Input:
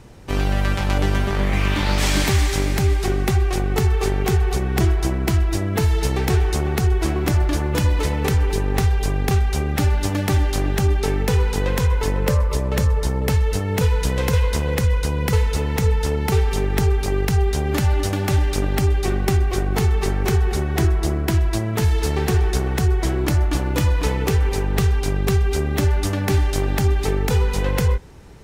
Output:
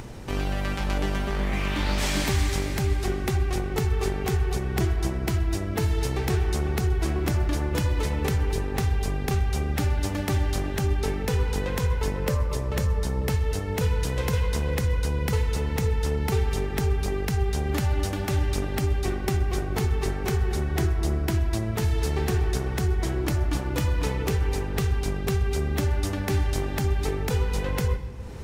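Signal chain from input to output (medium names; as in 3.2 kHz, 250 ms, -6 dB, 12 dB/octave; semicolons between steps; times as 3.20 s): upward compressor, threshold -23 dBFS; on a send: reverberation RT60 2.5 s, pre-delay 3 ms, DRR 12.5 dB; on the sum: trim -6 dB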